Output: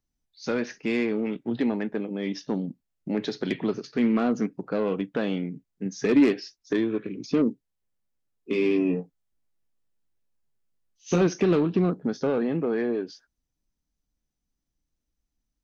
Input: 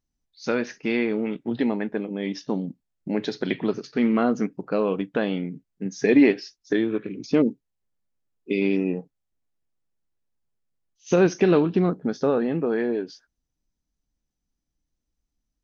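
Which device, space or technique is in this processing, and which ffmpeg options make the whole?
one-band saturation: -filter_complex "[0:a]acrossover=split=310|4400[link_01][link_02][link_03];[link_02]asoftclip=type=tanh:threshold=-21dB[link_04];[link_01][link_04][link_03]amix=inputs=3:normalize=0,asettb=1/sr,asplit=3[link_05][link_06][link_07];[link_05]atrim=end=8.514[link_08];[link_06]atrim=start=8.51:end=11.22,asetpts=PTS-STARTPTS,afade=type=in:duration=0.004:curve=qsin,afade=type=out:start_time=2.706:duration=0.004:curve=qsin,asplit=2[link_09][link_10];[link_10]adelay=18,volume=-4dB[link_11];[link_09][link_11]amix=inputs=2:normalize=0,atrim=end_sample=119511[link_12];[link_07]atrim=start=11.216[link_13];[link_08][link_12]acrossfade=duration=0.004:curve1=hsin:curve2=qsin[link_14];[link_14][link_13]acrossfade=duration=0.004:curve1=qsin:curve2=hsin,volume=-1dB"

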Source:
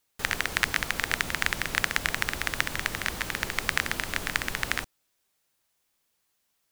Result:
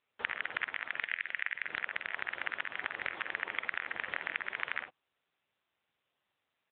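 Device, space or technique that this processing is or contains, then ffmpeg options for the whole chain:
voicemail: -filter_complex "[0:a]asplit=3[link_01][link_02][link_03];[link_01]afade=type=out:start_time=0.99:duration=0.02[link_04];[link_02]equalizer=frequency=125:width_type=o:width=1:gain=5,equalizer=frequency=250:width_type=o:width=1:gain=-12,equalizer=frequency=1000:width_type=o:width=1:gain=-8,equalizer=frequency=2000:width_type=o:width=1:gain=7,equalizer=frequency=8000:width_type=o:width=1:gain=4,afade=type=in:start_time=0.99:duration=0.02,afade=type=out:start_time=1.62:duration=0.02[link_05];[link_03]afade=type=in:start_time=1.62:duration=0.02[link_06];[link_04][link_05][link_06]amix=inputs=3:normalize=0,highpass=380,lowpass=3100,aecho=1:1:48|60:0.422|0.168,acompressor=threshold=-28dB:ratio=12" -ar 8000 -c:a libopencore_amrnb -b:a 7950

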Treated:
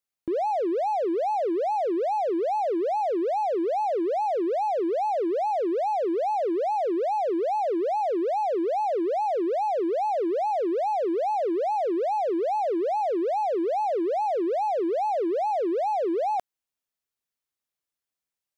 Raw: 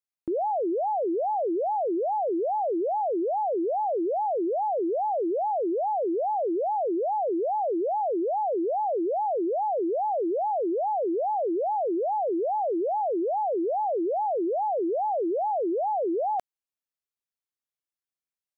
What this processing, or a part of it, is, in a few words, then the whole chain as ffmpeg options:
parallel distortion: -filter_complex "[0:a]asplit=2[link_01][link_02];[link_02]asoftclip=type=hard:threshold=-38.5dB,volume=-5dB[link_03];[link_01][link_03]amix=inputs=2:normalize=0"

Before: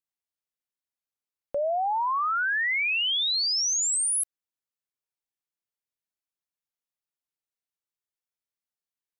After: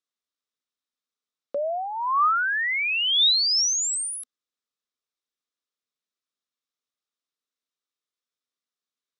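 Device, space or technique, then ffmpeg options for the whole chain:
television speaker: -af "highpass=210,equalizer=frequency=250:width_type=q:width=4:gain=8,equalizer=frequency=450:width_type=q:width=4:gain=5,equalizer=frequency=840:width_type=q:width=4:gain=-7,equalizer=frequency=1200:width_type=q:width=4:gain=8,equalizer=frequency=3700:width_type=q:width=4:gain=8,equalizer=frequency=5400:width_type=q:width=4:gain=4,lowpass=frequency=8700:width=0.5412,lowpass=frequency=8700:width=1.3066"

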